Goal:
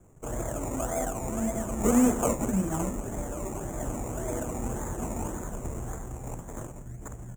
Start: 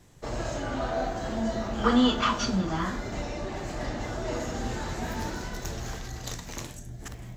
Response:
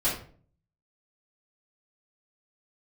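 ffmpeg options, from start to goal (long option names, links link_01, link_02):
-af "acrusher=samples=22:mix=1:aa=0.000001:lfo=1:lforange=13.2:lforate=1.8,firequalizer=gain_entry='entry(510,0);entry(4600,-25);entry(7000,11);entry(10000,-1)':delay=0.05:min_phase=1"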